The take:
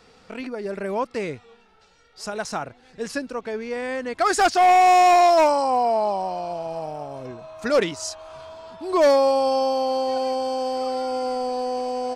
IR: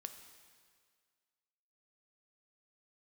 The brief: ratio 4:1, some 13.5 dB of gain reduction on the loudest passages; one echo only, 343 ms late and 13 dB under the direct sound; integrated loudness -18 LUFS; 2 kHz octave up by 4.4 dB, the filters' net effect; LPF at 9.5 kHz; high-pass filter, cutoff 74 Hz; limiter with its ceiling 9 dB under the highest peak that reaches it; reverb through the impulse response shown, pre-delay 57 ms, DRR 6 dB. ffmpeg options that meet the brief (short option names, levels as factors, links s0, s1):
-filter_complex "[0:a]highpass=74,lowpass=9500,equalizer=f=2000:t=o:g=5.5,acompressor=threshold=0.0355:ratio=4,alimiter=level_in=1.5:limit=0.0631:level=0:latency=1,volume=0.668,aecho=1:1:343:0.224,asplit=2[s0][s1];[1:a]atrim=start_sample=2205,adelay=57[s2];[s1][s2]afir=irnorm=-1:irlink=0,volume=0.794[s3];[s0][s3]amix=inputs=2:normalize=0,volume=6.68"